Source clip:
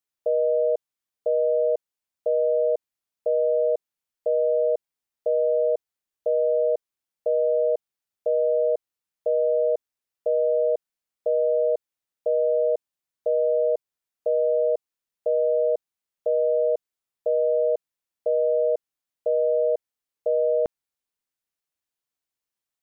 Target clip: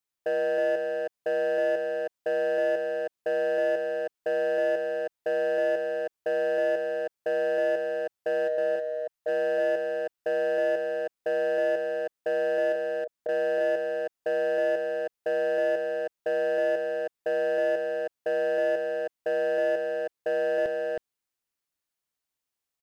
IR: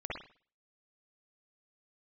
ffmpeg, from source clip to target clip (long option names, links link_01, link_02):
-filter_complex "[0:a]asplit=3[link_01][link_02][link_03];[link_01]afade=type=out:start_time=8.47:duration=0.02[link_04];[link_02]equalizer=frequency=360:width_type=o:width=1.2:gain=-9.5,afade=type=in:start_time=8.47:duration=0.02,afade=type=out:start_time=9.27:duration=0.02[link_05];[link_03]afade=type=in:start_time=9.27:duration=0.02[link_06];[link_04][link_05][link_06]amix=inputs=3:normalize=0,asettb=1/sr,asplit=3[link_07][link_08][link_09];[link_07]atrim=end=12.724[link_10];[link_08]atrim=start=12.72:end=13.29,asetpts=PTS-STARTPTS,afade=type=in:duration=0.004:curve=qsin,afade=type=out:start_time=0.566:duration=0.004:curve=qsin,acompressor=threshold=-31dB:ratio=4[link_11];[link_09]atrim=start=13.286[link_12];[link_10][link_11]acrossfade=duration=0.004:curve1=hsin:curve2=qsin[link_13];[link_13][link_12]acrossfade=duration=0.004:curve1=qsin:curve2=hsin,asoftclip=type=tanh:threshold=-17dB,aeval=exprs='0.119*(cos(1*acos(clip(val(0)/0.119,-1,1)))-cos(1*PI/2))+0.00596*(cos(3*acos(clip(val(0)/0.119,-1,1)))-cos(3*PI/2))+0.00266*(cos(5*acos(clip(val(0)/0.119,-1,1)))-cos(5*PI/2))':channel_layout=same,asoftclip=type=hard:threshold=-23.5dB,aecho=1:1:318:0.668"